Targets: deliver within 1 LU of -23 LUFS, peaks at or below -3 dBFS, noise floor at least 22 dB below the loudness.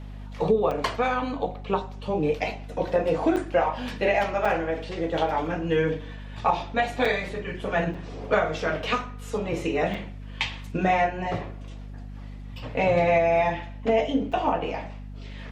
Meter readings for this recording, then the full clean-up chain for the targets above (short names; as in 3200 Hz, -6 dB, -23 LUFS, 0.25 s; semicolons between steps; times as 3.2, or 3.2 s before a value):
dropouts 7; longest dropout 4.6 ms; hum 50 Hz; harmonics up to 250 Hz; hum level -36 dBFS; loudness -26.0 LUFS; peak -9.0 dBFS; loudness target -23.0 LUFS
-> interpolate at 0.71/3.36/4.45/7.05/7.94/9.94/14.32, 4.6 ms; notches 50/100/150/200/250 Hz; gain +3 dB